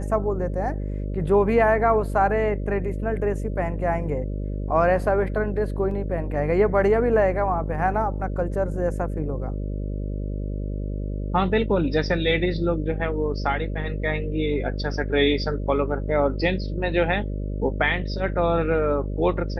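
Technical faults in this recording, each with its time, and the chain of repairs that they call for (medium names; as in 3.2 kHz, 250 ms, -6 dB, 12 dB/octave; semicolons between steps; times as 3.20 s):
buzz 50 Hz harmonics 12 -28 dBFS
5.91 s: dropout 2.6 ms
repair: de-hum 50 Hz, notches 12; interpolate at 5.91 s, 2.6 ms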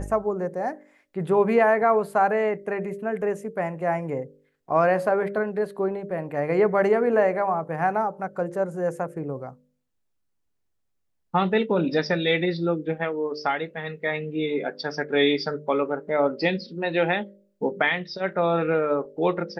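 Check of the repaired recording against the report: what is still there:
nothing left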